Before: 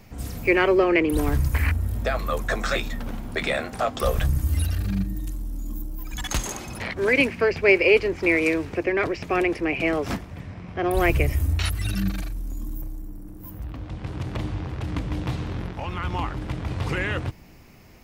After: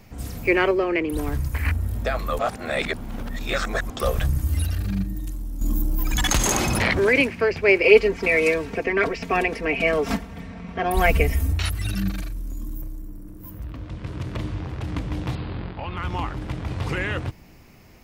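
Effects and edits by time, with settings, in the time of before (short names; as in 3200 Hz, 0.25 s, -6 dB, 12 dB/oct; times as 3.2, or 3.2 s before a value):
0.71–1.65 gain -3.5 dB
2.39–3.9 reverse
5.61–7.21 fast leveller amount 70%
7.83–11.52 comb 4.4 ms, depth 99%
12.15–14.6 notch 790 Hz, Q 6.1
15.35–15.97 Chebyshev low-pass 4900 Hz, order 8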